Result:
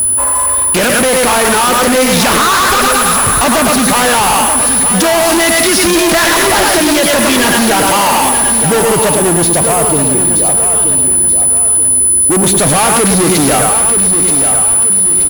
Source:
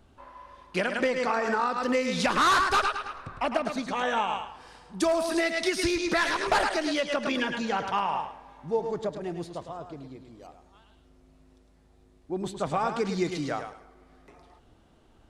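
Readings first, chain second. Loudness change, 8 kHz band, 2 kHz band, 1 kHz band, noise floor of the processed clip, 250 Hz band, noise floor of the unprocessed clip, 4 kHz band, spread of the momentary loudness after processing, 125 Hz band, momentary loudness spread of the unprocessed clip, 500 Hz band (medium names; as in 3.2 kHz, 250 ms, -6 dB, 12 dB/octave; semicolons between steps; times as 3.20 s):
+19.5 dB, +36.0 dB, +16.5 dB, +16.5 dB, -11 dBFS, +18.5 dB, -60 dBFS, +20.0 dB, 3 LU, +21.5 dB, 15 LU, +16.5 dB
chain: whistle 10 kHz -40 dBFS; fuzz box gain 49 dB, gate -53 dBFS; feedback delay 929 ms, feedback 41%, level -8.5 dB; trim +3.5 dB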